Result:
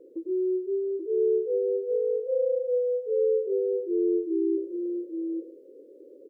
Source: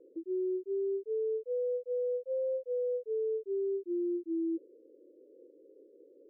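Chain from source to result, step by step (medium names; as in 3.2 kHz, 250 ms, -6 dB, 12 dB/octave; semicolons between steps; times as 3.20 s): dynamic bell 190 Hz, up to -5 dB, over -49 dBFS, Q 1.3; multi-tap echo 98/834 ms -8/-4.5 dB; on a send at -18 dB: reverberation RT60 0.45 s, pre-delay 72 ms; on the sum: trim +7 dB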